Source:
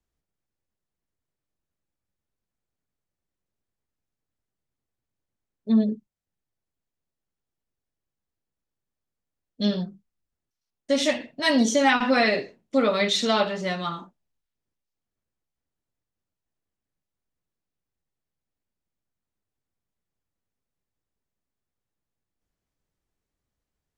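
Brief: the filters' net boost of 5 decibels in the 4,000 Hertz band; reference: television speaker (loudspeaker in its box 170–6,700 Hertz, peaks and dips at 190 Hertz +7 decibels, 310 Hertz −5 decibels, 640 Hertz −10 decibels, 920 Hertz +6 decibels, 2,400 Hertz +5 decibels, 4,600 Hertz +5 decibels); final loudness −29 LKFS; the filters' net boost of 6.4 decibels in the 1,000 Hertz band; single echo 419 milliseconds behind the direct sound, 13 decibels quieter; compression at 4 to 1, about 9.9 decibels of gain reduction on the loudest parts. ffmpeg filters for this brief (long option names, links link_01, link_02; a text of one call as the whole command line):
ffmpeg -i in.wav -af "equalizer=frequency=1000:width_type=o:gain=6.5,equalizer=frequency=4000:width_type=o:gain=3,acompressor=threshold=-23dB:ratio=4,highpass=frequency=170:width=0.5412,highpass=frequency=170:width=1.3066,equalizer=frequency=190:width_type=q:width=4:gain=7,equalizer=frequency=310:width_type=q:width=4:gain=-5,equalizer=frequency=640:width_type=q:width=4:gain=-10,equalizer=frequency=920:width_type=q:width=4:gain=6,equalizer=frequency=2400:width_type=q:width=4:gain=5,equalizer=frequency=4600:width_type=q:width=4:gain=5,lowpass=frequency=6700:width=0.5412,lowpass=frequency=6700:width=1.3066,aecho=1:1:419:0.224,volume=-2.5dB" out.wav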